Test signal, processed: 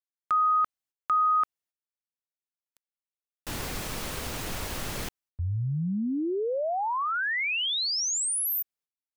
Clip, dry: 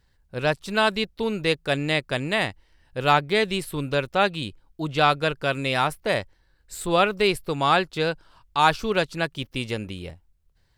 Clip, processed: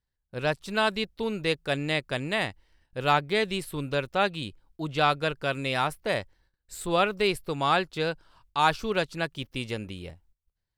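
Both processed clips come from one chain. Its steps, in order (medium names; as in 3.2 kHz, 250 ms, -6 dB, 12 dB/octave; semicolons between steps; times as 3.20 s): gate -57 dBFS, range -16 dB; trim -4 dB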